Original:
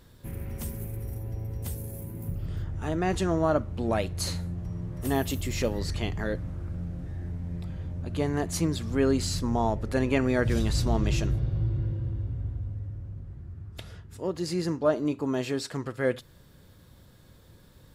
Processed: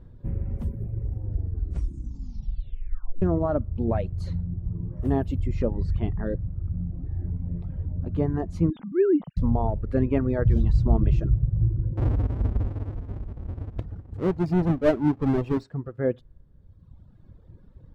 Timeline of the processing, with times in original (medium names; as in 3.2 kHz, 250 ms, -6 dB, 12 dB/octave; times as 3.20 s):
1.12 s: tape stop 2.10 s
8.70–9.37 s: formants replaced by sine waves
11.97–15.64 s: square wave that keeps the level
whole clip: low-pass 1 kHz 6 dB/octave; reverb removal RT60 1.6 s; tilt EQ -2.5 dB/octave